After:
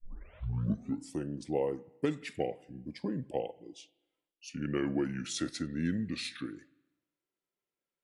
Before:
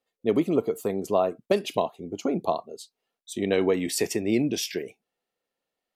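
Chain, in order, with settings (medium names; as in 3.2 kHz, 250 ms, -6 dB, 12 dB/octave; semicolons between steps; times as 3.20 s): tape start-up on the opening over 0.84 s; speed mistake 45 rpm record played at 33 rpm; spring tank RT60 1 s, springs 37/48 ms, chirp 45 ms, DRR 20 dB; trim -9 dB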